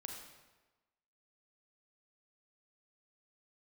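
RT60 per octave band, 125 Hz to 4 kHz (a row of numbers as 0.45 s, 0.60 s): 1.1 s, 1.1 s, 1.2 s, 1.2 s, 1.1 s, 0.95 s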